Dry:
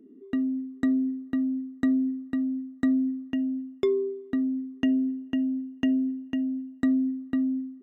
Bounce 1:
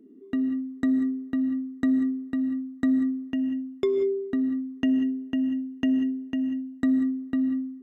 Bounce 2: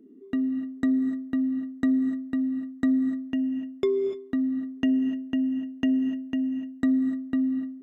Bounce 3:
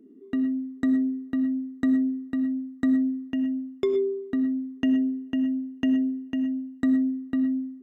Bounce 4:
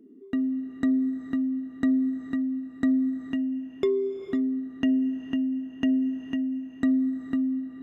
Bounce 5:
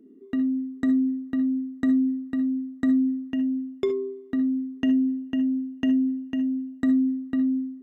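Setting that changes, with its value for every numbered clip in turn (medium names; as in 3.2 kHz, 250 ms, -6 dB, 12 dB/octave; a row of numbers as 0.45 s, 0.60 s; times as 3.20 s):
gated-style reverb, gate: 210 ms, 320 ms, 140 ms, 540 ms, 90 ms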